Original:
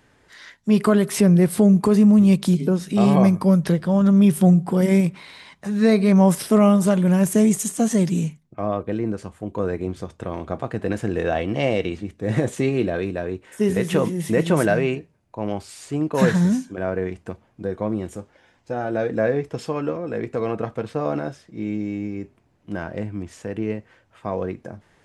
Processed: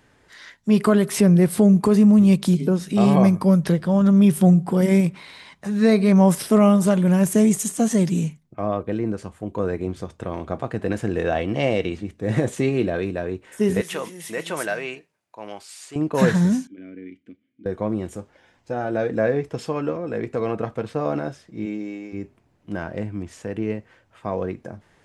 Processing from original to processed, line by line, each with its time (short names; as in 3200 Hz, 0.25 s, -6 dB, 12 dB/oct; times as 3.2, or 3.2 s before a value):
13.81–15.96 HPF 1300 Hz 6 dB/oct
16.67–17.66 vowel filter i
21.65–22.12 HPF 210 Hz -> 470 Hz